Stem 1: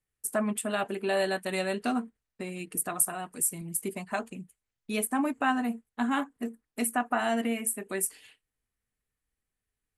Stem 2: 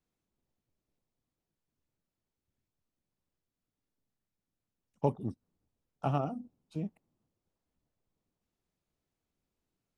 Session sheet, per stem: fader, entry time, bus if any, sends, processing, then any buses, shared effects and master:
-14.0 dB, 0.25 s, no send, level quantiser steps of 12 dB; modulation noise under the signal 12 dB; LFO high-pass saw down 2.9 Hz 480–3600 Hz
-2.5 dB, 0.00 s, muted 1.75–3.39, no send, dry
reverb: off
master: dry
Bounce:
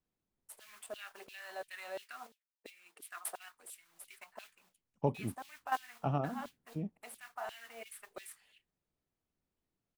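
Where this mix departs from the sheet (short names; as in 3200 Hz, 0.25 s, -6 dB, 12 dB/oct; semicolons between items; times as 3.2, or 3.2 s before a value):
stem 1 -14.0 dB -> -8.0 dB; master: extra high shelf 4100 Hz -7 dB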